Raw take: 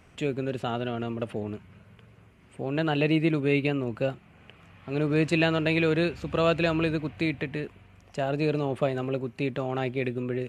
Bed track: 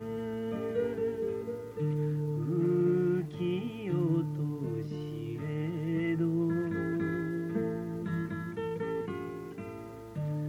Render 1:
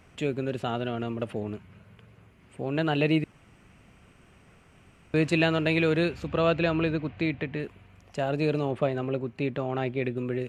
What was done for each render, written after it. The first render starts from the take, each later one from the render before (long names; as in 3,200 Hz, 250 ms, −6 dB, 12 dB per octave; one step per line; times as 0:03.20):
0:03.24–0:05.14: fill with room tone
0:06.27–0:07.60: high-frequency loss of the air 100 metres
0:08.71–0:10.17: high-shelf EQ 6,000 Hz −11 dB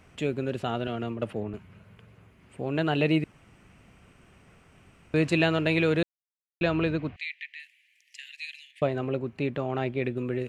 0:00.87–0:01.54: multiband upward and downward expander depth 100%
0:06.03–0:06.61: silence
0:07.16–0:08.82: Butterworth high-pass 1,800 Hz 96 dB per octave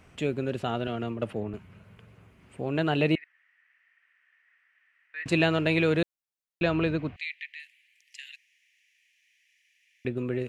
0:03.15–0:05.26: four-pole ladder band-pass 1,900 Hz, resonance 85%
0:08.36–0:10.05: fill with room tone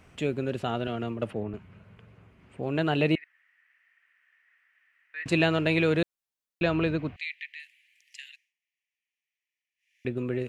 0:01.31–0:02.63: high-shelf EQ 6,400 Hz −12 dB
0:08.20–0:10.09: duck −23 dB, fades 0.33 s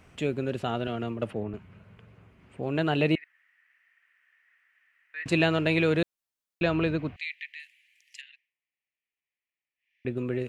0:08.21–0:10.08: high-frequency loss of the air 270 metres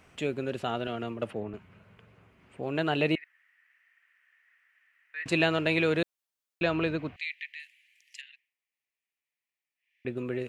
low-shelf EQ 250 Hz −7 dB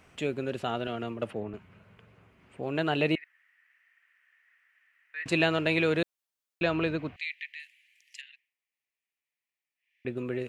no processing that can be heard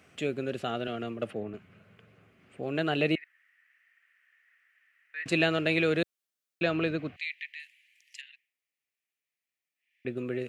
high-pass filter 100 Hz
parametric band 940 Hz −11.5 dB 0.26 octaves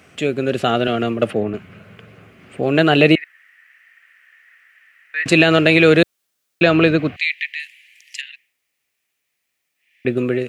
automatic gain control gain up to 5 dB
boost into a limiter +10.5 dB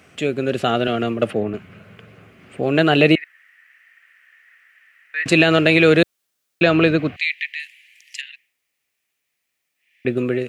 level −1.5 dB